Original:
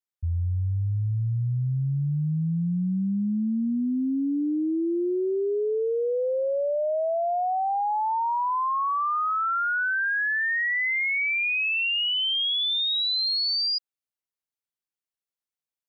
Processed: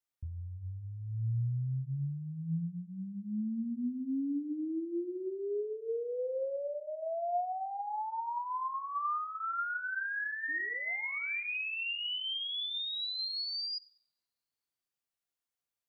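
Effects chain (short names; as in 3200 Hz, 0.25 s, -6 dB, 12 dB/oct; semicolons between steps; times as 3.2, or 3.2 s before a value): limiter -34 dBFS, peak gain reduction 11.5 dB; painted sound rise, 10.48–11.57, 280–2900 Hz -54 dBFS; on a send: reverb RT60 0.85 s, pre-delay 3 ms, DRR 6 dB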